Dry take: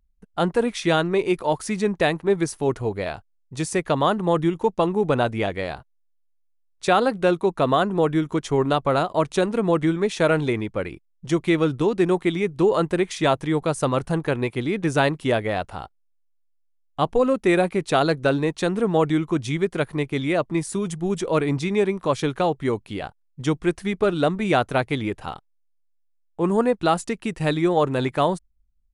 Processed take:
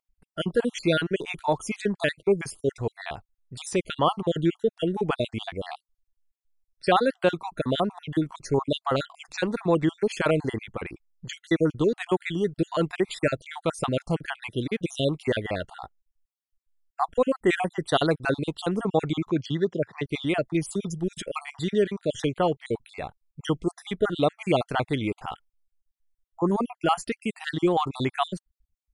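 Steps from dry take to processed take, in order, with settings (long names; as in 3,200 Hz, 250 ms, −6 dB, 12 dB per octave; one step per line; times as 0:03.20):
time-frequency cells dropped at random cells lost 49%
dynamic equaliser 3,100 Hz, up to +5 dB, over −49 dBFS, Q 4.5
0:19.29–0:20.06: elliptic band-pass filter 110–5,900 Hz, stop band 40 dB
level −1.5 dB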